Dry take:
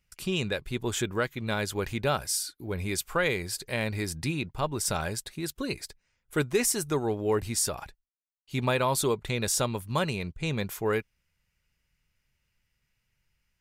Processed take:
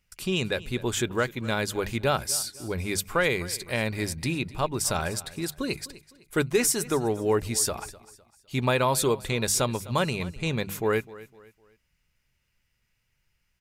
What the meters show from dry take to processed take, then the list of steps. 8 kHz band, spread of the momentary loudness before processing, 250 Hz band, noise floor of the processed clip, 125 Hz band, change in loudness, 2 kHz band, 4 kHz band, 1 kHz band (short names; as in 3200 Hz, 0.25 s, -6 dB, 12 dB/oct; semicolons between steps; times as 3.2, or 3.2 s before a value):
+2.5 dB, 8 LU, +2.5 dB, -74 dBFS, +1.5 dB, +2.5 dB, +2.5 dB, +2.5 dB, +2.5 dB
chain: notches 50/100/150/200 Hz; on a send: feedback echo 0.254 s, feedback 36%, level -19 dB; on the sum: gain +2.5 dB